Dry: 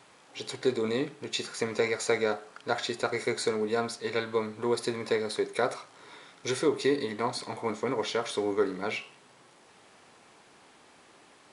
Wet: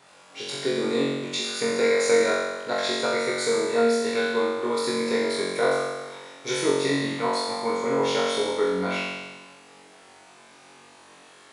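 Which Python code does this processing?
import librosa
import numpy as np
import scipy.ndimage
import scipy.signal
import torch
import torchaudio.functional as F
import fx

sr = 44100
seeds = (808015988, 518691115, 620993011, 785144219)

y = fx.low_shelf(x, sr, hz=170.0, db=-5.5)
y = fx.room_flutter(y, sr, wall_m=3.7, rt60_s=1.3)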